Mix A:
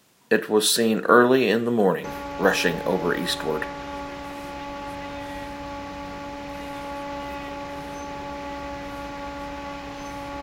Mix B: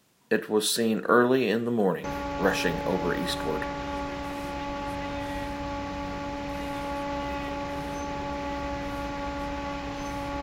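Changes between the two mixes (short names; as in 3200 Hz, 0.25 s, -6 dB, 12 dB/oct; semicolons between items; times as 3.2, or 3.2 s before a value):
speech -6.0 dB; master: add low shelf 240 Hz +4.5 dB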